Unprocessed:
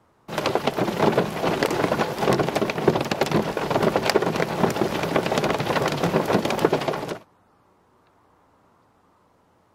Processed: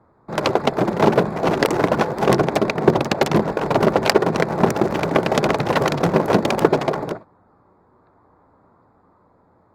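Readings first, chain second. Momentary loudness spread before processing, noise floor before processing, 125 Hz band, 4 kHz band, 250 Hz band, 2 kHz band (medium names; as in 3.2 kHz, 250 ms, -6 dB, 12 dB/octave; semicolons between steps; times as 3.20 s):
4 LU, -61 dBFS, +4.5 dB, +1.5 dB, +4.5 dB, +2.5 dB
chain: local Wiener filter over 15 samples; trim +4.5 dB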